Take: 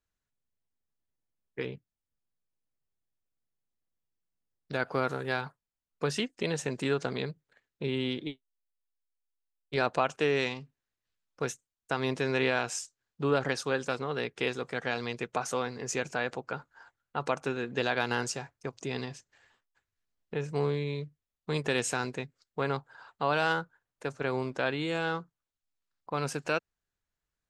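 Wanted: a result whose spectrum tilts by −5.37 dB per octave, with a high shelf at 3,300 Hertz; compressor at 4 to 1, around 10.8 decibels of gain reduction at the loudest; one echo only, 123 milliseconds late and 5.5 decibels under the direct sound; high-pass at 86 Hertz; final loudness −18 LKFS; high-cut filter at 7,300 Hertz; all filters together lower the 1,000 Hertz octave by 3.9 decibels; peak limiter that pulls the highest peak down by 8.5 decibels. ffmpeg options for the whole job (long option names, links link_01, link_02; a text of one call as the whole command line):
ffmpeg -i in.wav -af "highpass=86,lowpass=7300,equalizer=frequency=1000:width_type=o:gain=-4.5,highshelf=frequency=3300:gain=-7.5,acompressor=threshold=-37dB:ratio=4,alimiter=level_in=5dB:limit=-24dB:level=0:latency=1,volume=-5dB,aecho=1:1:123:0.531,volume=24.5dB" out.wav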